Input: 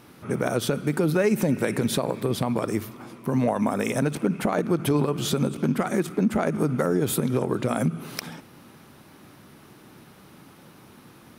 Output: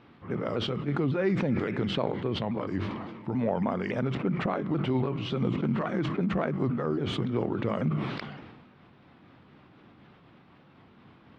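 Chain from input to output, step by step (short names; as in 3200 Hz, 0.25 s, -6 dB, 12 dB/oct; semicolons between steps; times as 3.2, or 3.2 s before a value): repeated pitch sweeps -3 st, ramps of 0.279 s; LPF 3600 Hz 24 dB/oct; sustainer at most 38 dB/s; gain -5 dB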